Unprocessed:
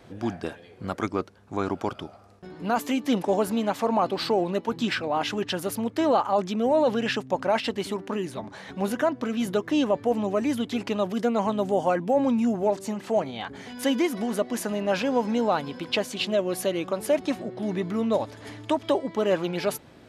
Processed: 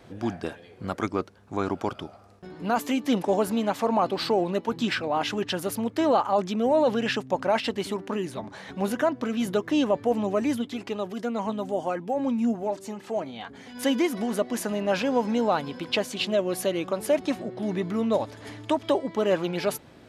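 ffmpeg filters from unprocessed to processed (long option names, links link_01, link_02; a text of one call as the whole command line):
ffmpeg -i in.wav -filter_complex "[0:a]asplit=3[link_01][link_02][link_03];[link_01]afade=type=out:start_time=10.56:duration=0.02[link_04];[link_02]flanger=delay=2.3:depth=2:regen=60:speed=1:shape=sinusoidal,afade=type=in:start_time=10.56:duration=0.02,afade=type=out:start_time=13.74:duration=0.02[link_05];[link_03]afade=type=in:start_time=13.74:duration=0.02[link_06];[link_04][link_05][link_06]amix=inputs=3:normalize=0" out.wav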